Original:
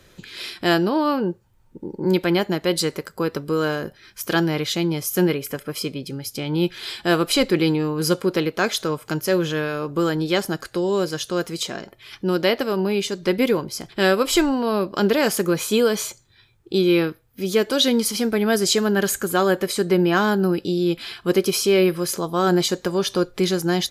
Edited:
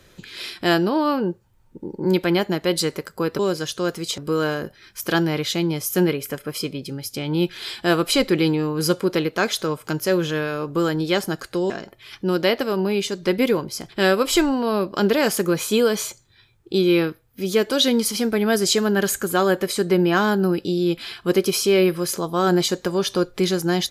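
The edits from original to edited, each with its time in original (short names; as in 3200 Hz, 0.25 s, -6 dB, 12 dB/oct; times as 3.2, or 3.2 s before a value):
10.91–11.7 move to 3.39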